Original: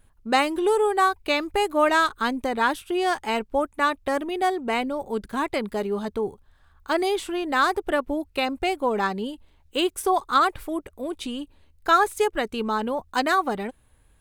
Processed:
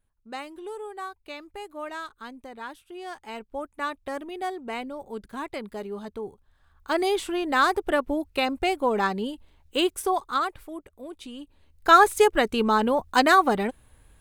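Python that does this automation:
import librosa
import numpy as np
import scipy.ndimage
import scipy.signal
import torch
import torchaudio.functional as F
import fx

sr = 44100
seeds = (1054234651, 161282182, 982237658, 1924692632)

y = fx.gain(x, sr, db=fx.line((2.89, -16.0), (3.83, -8.0), (6.26, -8.0), (7.11, 0.0), (9.85, 0.0), (10.63, -9.0), (11.31, -9.0), (11.97, 4.0)))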